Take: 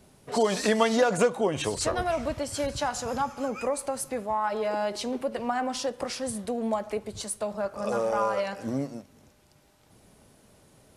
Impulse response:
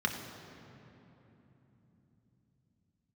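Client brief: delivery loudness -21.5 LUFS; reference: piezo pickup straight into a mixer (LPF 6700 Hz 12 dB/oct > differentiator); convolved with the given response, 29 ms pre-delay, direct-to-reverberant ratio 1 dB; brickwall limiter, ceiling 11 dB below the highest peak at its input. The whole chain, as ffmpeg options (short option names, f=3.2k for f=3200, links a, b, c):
-filter_complex "[0:a]alimiter=limit=-21.5dB:level=0:latency=1,asplit=2[a][b];[1:a]atrim=start_sample=2205,adelay=29[c];[b][c]afir=irnorm=-1:irlink=0,volume=-8.5dB[d];[a][d]amix=inputs=2:normalize=0,lowpass=6.7k,aderivative,volume=21dB"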